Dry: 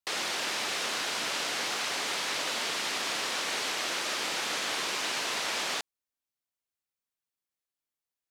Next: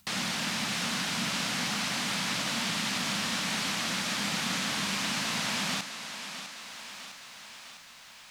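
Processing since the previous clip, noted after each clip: resonant low shelf 280 Hz +11 dB, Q 3; upward compressor, threshold -43 dBFS; thinning echo 654 ms, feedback 66%, high-pass 270 Hz, level -10 dB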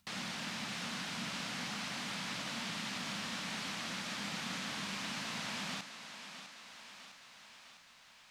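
treble shelf 8 kHz -8 dB; trim -8.5 dB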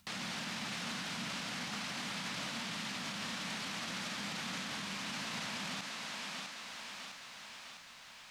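peak limiter -38 dBFS, peak gain reduction 10 dB; trim +6.5 dB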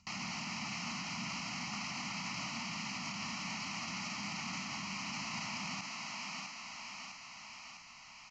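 static phaser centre 2.4 kHz, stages 8; resampled via 16 kHz; trim +2.5 dB

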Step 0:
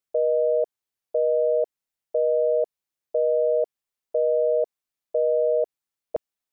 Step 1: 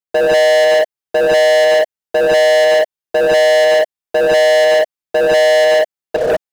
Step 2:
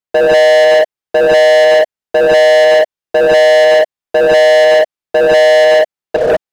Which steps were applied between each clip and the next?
gated-style reverb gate 210 ms rising, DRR -5 dB; waveshaping leveller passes 5
treble shelf 6.4 kHz -8 dB; trim +3.5 dB

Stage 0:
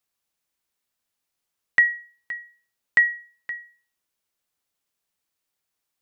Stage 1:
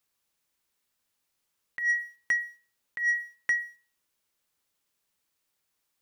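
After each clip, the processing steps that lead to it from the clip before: band-stop 710 Hz, Q 12; compressor with a negative ratio -28 dBFS, ratio -1; waveshaping leveller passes 1; trim -1.5 dB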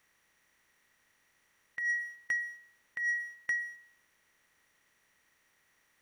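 spectral levelling over time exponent 0.6; trim -6.5 dB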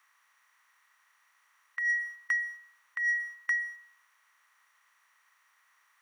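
resonant high-pass 1.1 kHz, resonance Q 3.4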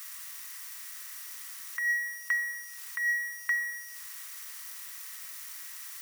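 zero-crossing glitches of -35.5 dBFS; simulated room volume 1400 m³, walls mixed, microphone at 0.65 m

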